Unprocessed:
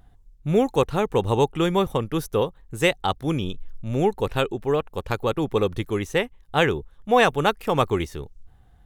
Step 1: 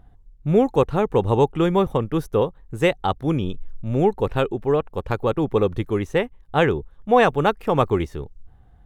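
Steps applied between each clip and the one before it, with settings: high shelf 2500 Hz -11.5 dB; gain +3 dB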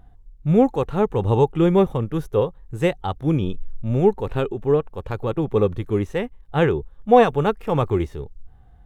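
harmonic-percussive split harmonic +9 dB; gain -5.5 dB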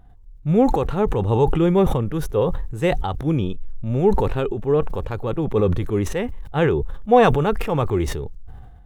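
sustainer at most 36 dB/s; gain -1 dB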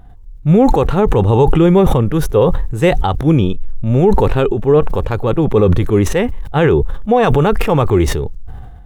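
limiter -11 dBFS, peak gain reduction 9.5 dB; gain +9 dB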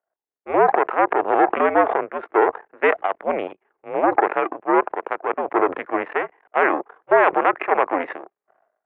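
power-law curve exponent 2; mistuned SSB -82 Hz 560–2300 Hz; gain +3.5 dB

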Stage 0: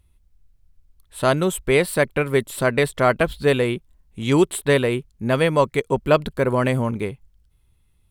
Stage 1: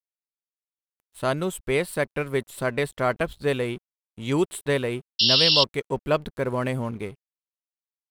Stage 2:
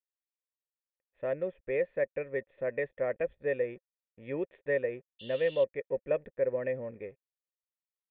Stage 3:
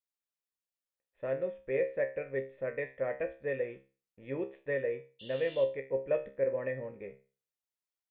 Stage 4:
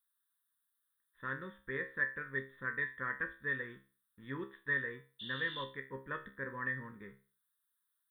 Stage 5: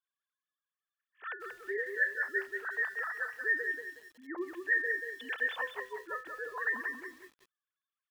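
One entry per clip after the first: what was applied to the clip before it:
crossover distortion -43 dBFS; painted sound noise, 5.19–5.64, 2700–5600 Hz -13 dBFS; gain -6 dB
vocal tract filter e; gain +2.5 dB
resonator 67 Hz, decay 0.35 s, harmonics all, mix 80%; gain +5.5 dB
EQ curve 150 Hz 0 dB, 220 Hz +3 dB, 400 Hz -7 dB, 680 Hz -27 dB, 1000 Hz +9 dB, 1700 Hz +14 dB, 2500 Hz -14 dB, 3600 Hz +13 dB, 6100 Hz -27 dB, 8800 Hz +14 dB; gain -1.5 dB
sine-wave speech; lo-fi delay 0.184 s, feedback 35%, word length 10-bit, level -5 dB; gain +3.5 dB

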